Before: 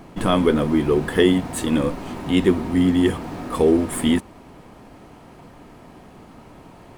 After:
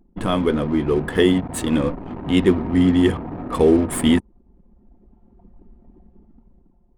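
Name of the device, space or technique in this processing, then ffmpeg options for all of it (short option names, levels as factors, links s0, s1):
voice memo with heavy noise removal: -af "anlmdn=25.1,dynaudnorm=f=210:g=9:m=3.98,equalizer=f=72:t=o:w=1.7:g=2.5,volume=0.75"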